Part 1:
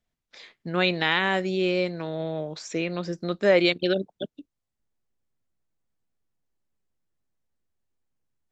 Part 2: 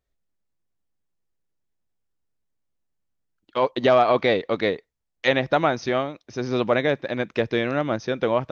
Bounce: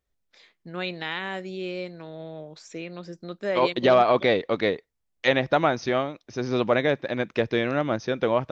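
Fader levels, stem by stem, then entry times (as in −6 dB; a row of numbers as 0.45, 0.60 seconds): −8.0, −1.0 decibels; 0.00, 0.00 seconds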